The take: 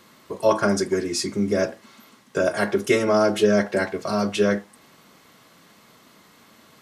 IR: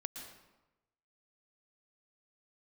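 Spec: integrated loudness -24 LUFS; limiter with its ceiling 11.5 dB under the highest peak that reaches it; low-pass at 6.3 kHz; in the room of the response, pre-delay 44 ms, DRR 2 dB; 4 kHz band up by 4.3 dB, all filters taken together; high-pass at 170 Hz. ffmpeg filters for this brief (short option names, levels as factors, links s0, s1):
-filter_complex "[0:a]highpass=170,lowpass=6300,equalizer=f=4000:t=o:g=7,alimiter=limit=0.126:level=0:latency=1,asplit=2[s0][s1];[1:a]atrim=start_sample=2205,adelay=44[s2];[s1][s2]afir=irnorm=-1:irlink=0,volume=0.944[s3];[s0][s3]amix=inputs=2:normalize=0,volume=1.26"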